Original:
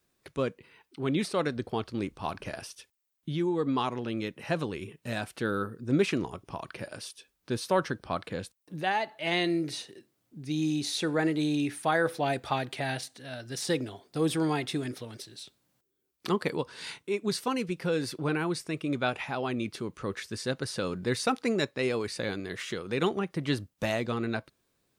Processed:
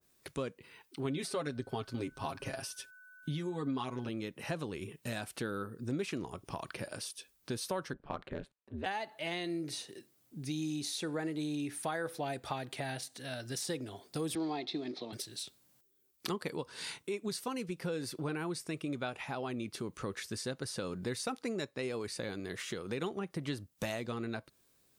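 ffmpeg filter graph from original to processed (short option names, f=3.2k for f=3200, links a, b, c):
-filter_complex "[0:a]asettb=1/sr,asplit=3[a][b][c];[a]atrim=end=1.044[d];[b]atrim=start=1.04:end=4.09,asetpts=PTS-STARTPTS,afade=t=in:d=0.004:c=qsin,afade=t=out:st=3.046:d=0.004:c=qsin,aecho=1:1:7.4:0.74,atrim=end_sample=134505,aeval=exprs='val(0)+0.00178*sin(2*PI*1500*n/s)':c=same[e];[c]atrim=start=4.086[f];[d][e]acrossfade=d=0.004:c1=hsin:c2=qsin[g];[g][f]acrossfade=d=0.004:c1=qsin:c2=hsin,asettb=1/sr,asplit=3[h][i][j];[h]atrim=end=7.934[k];[i]atrim=start=7.93:end=8.86,asetpts=PTS-STARTPTS,afade=t=in:d=0.004:c=qsin,afade=t=out:st=0.926:d=0.004:c=qsin,equalizer=f=5.6k:t=o:w=0.52:g=-9,adynamicsmooth=sensitivity=1.5:basefreq=2.8k,aeval=exprs='val(0)*sin(2*PI*74*n/s)':c=same[l];[j]atrim=start=8.856[m];[k][l]acrossfade=d=0.004:c1=hsin:c2=qsin[n];[n][m]acrossfade=d=0.004:c1=qsin:c2=hsin,asettb=1/sr,asplit=3[o][p][q];[o]atrim=end=14.354[r];[p]atrim=start=14.35:end=15.13,asetpts=PTS-STARTPTS,afade=t=in:d=0.004:c=qsin,afade=t=out:st=0.776:d=0.004:c=qsin,bandreject=f=2.9k:w=11,acrusher=bits=6:mode=log:mix=0:aa=0.000001,highpass=f=180:w=0.5412,highpass=f=180:w=1.3066,equalizer=f=350:t=q:w=4:g=6,equalizer=f=490:t=q:w=4:g=-3,equalizer=f=710:t=q:w=4:g=7,equalizer=f=1.5k:t=q:w=4:g=-9,equalizer=f=4.1k:t=q:w=4:g=9,lowpass=f=4.7k:w=0.5412,lowpass=f=4.7k:w=1.3066[s];[q]atrim=start=15.126[t];[r][s]acrossfade=d=0.004:c1=hsin:c2=qsin[u];[u][t]acrossfade=d=0.004:c1=qsin:c2=hsin,highshelf=f=5.2k:g=9,acompressor=threshold=-36dB:ratio=3,adynamicequalizer=threshold=0.00316:dfrequency=1500:dqfactor=0.7:tfrequency=1500:tqfactor=0.7:attack=5:release=100:ratio=0.375:range=2:mode=cutabove:tftype=highshelf"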